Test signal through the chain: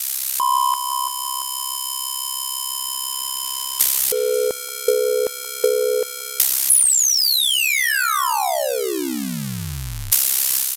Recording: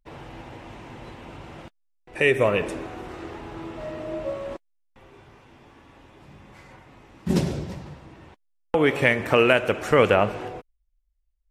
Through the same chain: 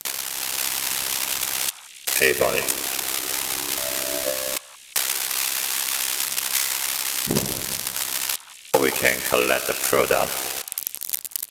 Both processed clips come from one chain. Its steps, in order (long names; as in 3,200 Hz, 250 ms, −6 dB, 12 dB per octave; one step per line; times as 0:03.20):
spike at every zero crossing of −10.5 dBFS
low-shelf EQ 260 Hz −10 dB
ring modulation 33 Hz
automatic gain control gain up to 9.5 dB
leveller curve on the samples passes 1
in parallel at −10.5 dB: bit-depth reduction 6 bits, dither triangular
on the sum: transient designer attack +8 dB, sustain −1 dB
on a send: echo through a band-pass that steps 178 ms, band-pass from 1,100 Hz, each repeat 1.4 octaves, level −10.5 dB
on the sum: downsampling to 32,000 Hz
level −9 dB